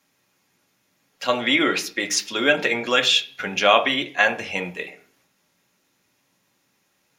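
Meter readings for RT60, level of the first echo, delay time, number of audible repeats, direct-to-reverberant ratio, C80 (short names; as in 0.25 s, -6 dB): 0.45 s, none, none, none, 4.5 dB, 20.0 dB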